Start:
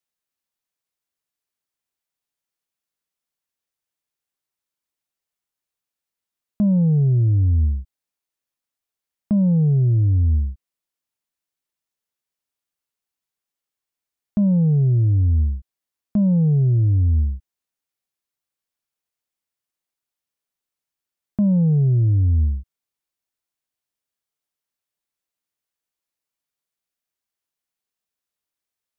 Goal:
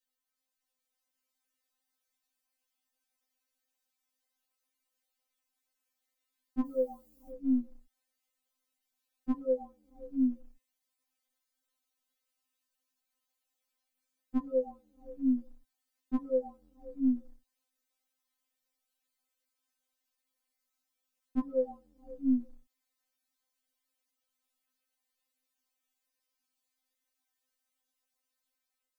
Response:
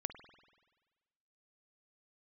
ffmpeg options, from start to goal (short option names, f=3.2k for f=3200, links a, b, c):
-filter_complex "[0:a]dynaudnorm=f=560:g=3:m=4dB,asettb=1/sr,asplit=3[a][b][c];[a]atrim=end=6.654[d];[b]atrim=start=6.65:end=7.31,asetpts=PTS-STARTPTS,afade=t=in:d=0.004:c=qsin,afade=t=out:st=0.656:d=0.004:c=qsin,aemphasis=mode=production:type=75fm[e];[c]atrim=start=7.306[f];[d][e]acrossfade=d=0.004:c1=hsin:c2=qsin[g];[g][f]acrossfade=d=0.004:c1=qsin:c2=hsin,afftfilt=real='re*3.46*eq(mod(b,12),0)':imag='im*3.46*eq(mod(b,12),0)':win_size=2048:overlap=0.75"